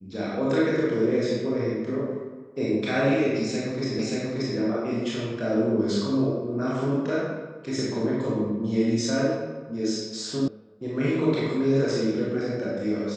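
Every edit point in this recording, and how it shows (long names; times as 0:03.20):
0:03.99: the same again, the last 0.58 s
0:10.48: cut off before it has died away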